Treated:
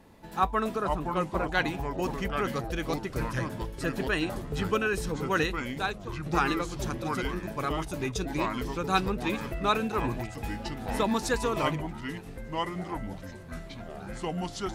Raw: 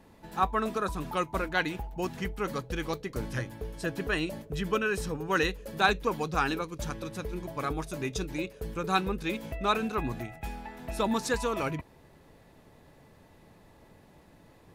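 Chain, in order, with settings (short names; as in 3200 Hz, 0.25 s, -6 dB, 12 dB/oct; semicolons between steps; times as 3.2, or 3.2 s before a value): 0.76–1.52 high shelf 2400 Hz -10 dB; 5.24–6.26 fade out linear; echoes that change speed 0.378 s, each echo -4 st, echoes 3, each echo -6 dB; gain +1 dB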